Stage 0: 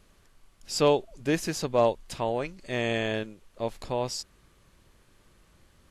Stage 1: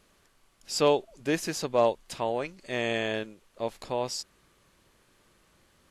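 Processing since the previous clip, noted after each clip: bass shelf 130 Hz -11 dB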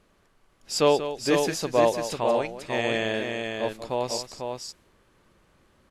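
multi-tap echo 186/496 ms -11.5/-5 dB; tape noise reduction on one side only decoder only; trim +2.5 dB

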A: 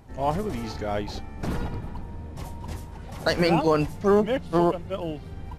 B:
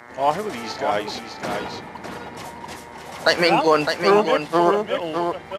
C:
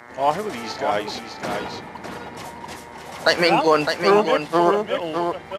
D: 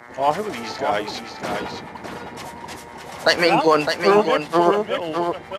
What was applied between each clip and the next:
mains buzz 120 Hz, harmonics 18, -50 dBFS -2 dB/octave; frequency weighting A; delay 608 ms -6 dB; trim +7.5 dB
no audible change
harmonic tremolo 9.8 Hz, depth 50%, crossover 810 Hz; trim +3 dB

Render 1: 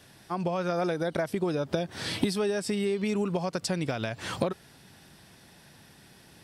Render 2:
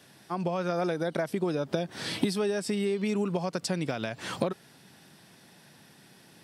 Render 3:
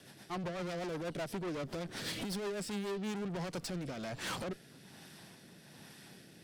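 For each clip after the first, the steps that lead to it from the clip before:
Chebyshev high-pass 160 Hz, order 2
valve stage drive 40 dB, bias 0.55; rotary cabinet horn 8 Hz, later 1.2 Hz, at 2.53 s; trim +5 dB

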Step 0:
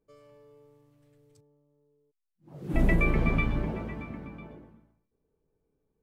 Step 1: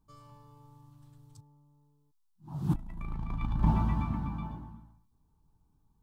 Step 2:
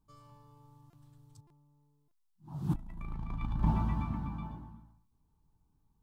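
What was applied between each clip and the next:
FFT filter 100 Hz 0 dB, 320 Hz -5 dB, 510 Hz -18 dB, 910 Hz +4 dB, 2.1 kHz -19 dB, 3.6 kHz -7 dB; compressor with a negative ratio -32 dBFS, ratio -0.5; peaking EQ 430 Hz -10.5 dB 1.5 oct; trim +6 dB
buffer glitch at 0.90/1.47/2.08 s, samples 128, times 10; trim -3 dB

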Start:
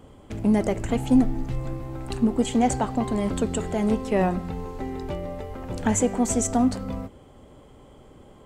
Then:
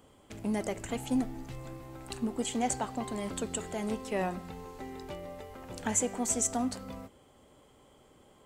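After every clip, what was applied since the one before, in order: tilt EQ +2 dB/octave; trim -7.5 dB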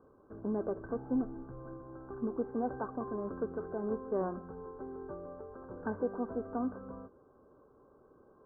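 rippled Chebyshev low-pass 1.6 kHz, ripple 9 dB; trim +2.5 dB

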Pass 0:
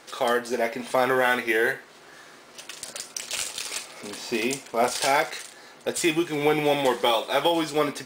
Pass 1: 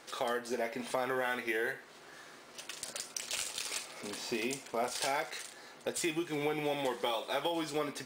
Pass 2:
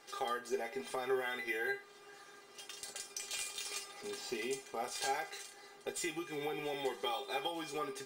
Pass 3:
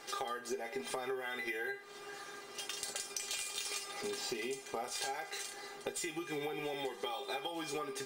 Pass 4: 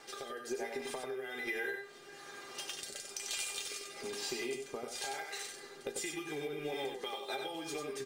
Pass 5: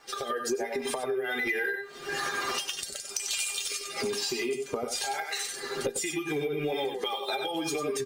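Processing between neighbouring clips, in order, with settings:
compression 2.5:1, threshold -28 dBFS, peak gain reduction 8 dB; trim -5 dB
feedback comb 400 Hz, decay 0.15 s, harmonics all, mix 90%; trim +7.5 dB
compression 10:1, threshold -44 dBFS, peak gain reduction 14.5 dB; trim +8 dB
rotary cabinet horn 1.1 Hz, later 5 Hz, at 6.39 s; on a send: delay 94 ms -5.5 dB; on the sum: trim +1 dB
expander on every frequency bin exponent 1.5; recorder AGC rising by 50 dB/s; Chebyshev shaper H 5 -21 dB, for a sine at -21.5 dBFS; trim +7 dB

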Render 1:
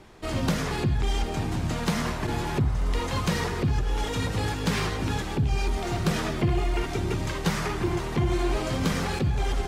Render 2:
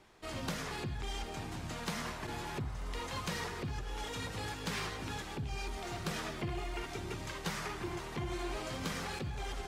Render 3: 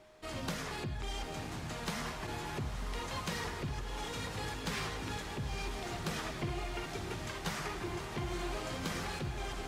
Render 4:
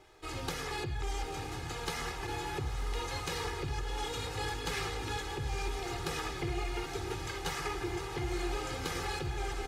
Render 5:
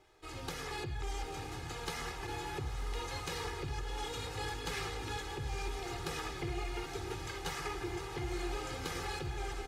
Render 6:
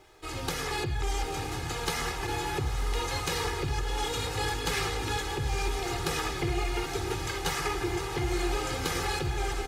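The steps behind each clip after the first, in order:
bass shelf 490 Hz -7.5 dB; trim -8 dB
whistle 620 Hz -60 dBFS; echo that smears into a reverb 911 ms, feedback 69%, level -10 dB
comb 2.4 ms, depth 79%
level rider gain up to 3 dB; trim -6 dB
treble shelf 8.7 kHz +4.5 dB; trim +8.5 dB

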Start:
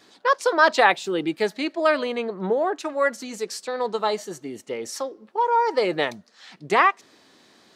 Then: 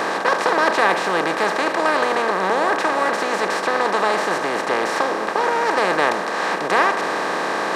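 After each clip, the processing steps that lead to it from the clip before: spectral levelling over time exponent 0.2; trim -6.5 dB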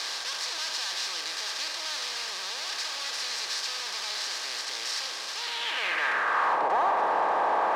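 fuzz box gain 30 dB, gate -36 dBFS; band-pass sweep 4.9 kHz -> 830 Hz, 5.37–6.65 s; trim -4.5 dB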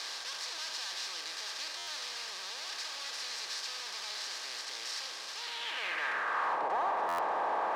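buffer glitch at 1.77/7.08 s, samples 512, times 8; trim -7 dB

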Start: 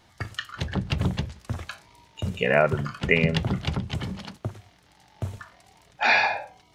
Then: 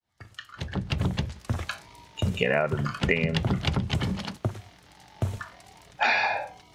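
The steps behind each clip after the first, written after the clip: fade-in on the opening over 1.77 s; compression 6:1, threshold -25 dBFS, peak gain reduction 10.5 dB; trim +4.5 dB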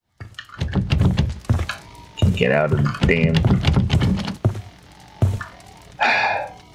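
bass shelf 370 Hz +6 dB; in parallel at -8 dB: saturation -20 dBFS, distortion -11 dB; on the sum: trim +3 dB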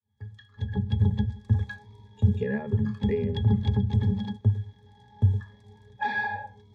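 tone controls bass +2 dB, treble +14 dB; pitch-class resonator G#, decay 0.12 s; trim -1.5 dB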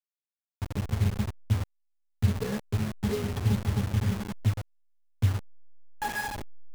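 send-on-delta sampling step -27 dBFS; trim -2.5 dB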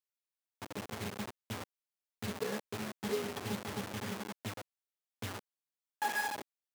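high-pass 310 Hz 12 dB/octave; trim -2 dB

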